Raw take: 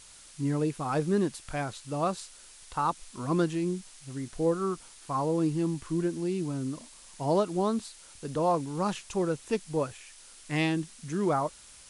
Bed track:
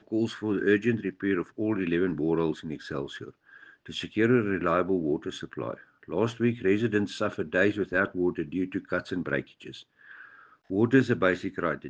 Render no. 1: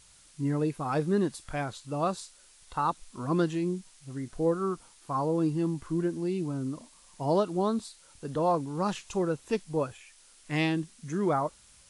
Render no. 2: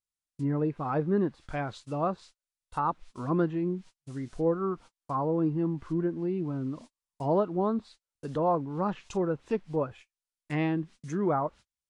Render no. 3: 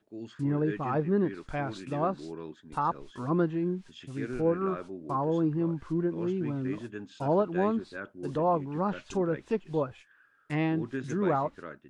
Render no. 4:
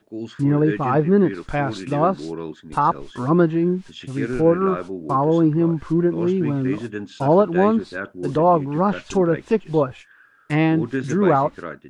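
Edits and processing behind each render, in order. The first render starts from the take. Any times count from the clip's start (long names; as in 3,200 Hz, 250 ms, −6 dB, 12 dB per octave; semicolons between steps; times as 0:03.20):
noise reduction from a noise print 6 dB
noise gate −46 dBFS, range −39 dB; treble cut that deepens with the level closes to 1,700 Hz, closed at −26.5 dBFS
mix in bed track −14.5 dB
level +10.5 dB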